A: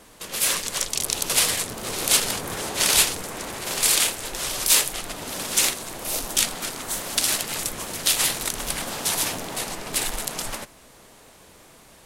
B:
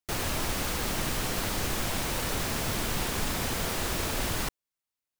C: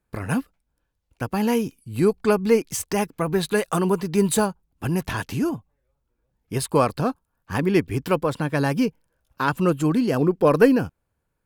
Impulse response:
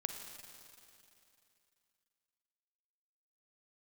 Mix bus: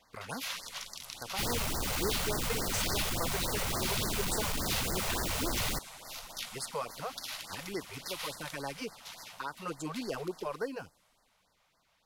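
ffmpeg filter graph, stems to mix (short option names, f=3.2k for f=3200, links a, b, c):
-filter_complex "[0:a]volume=-12.5dB,afade=t=out:st=8.2:d=0.52:silence=0.421697,asplit=2[a][b];[b]volume=-8.5dB[c];[1:a]asoftclip=type=tanh:threshold=-32dB,adelay=1300,volume=2.5dB[d];[2:a]highshelf=f=5.7k:g=9,volume=-8dB[e];[a][e]amix=inputs=2:normalize=0,acrossover=split=440 7900:gain=0.224 1 0.158[f][g][h];[f][g][h]amix=inputs=3:normalize=0,alimiter=level_in=0.5dB:limit=-24dB:level=0:latency=1:release=343,volume=-0.5dB,volume=0dB[i];[3:a]atrim=start_sample=2205[j];[c][j]afir=irnorm=-1:irlink=0[k];[d][i][k]amix=inputs=3:normalize=0,bandreject=f=1.7k:w=14,afftfilt=real='re*(1-between(b*sr/1024,260*pow(3000/260,0.5+0.5*sin(2*PI*3.5*pts/sr))/1.41,260*pow(3000/260,0.5+0.5*sin(2*PI*3.5*pts/sr))*1.41))':imag='im*(1-between(b*sr/1024,260*pow(3000/260,0.5+0.5*sin(2*PI*3.5*pts/sr))/1.41,260*pow(3000/260,0.5+0.5*sin(2*PI*3.5*pts/sr))*1.41))':win_size=1024:overlap=0.75"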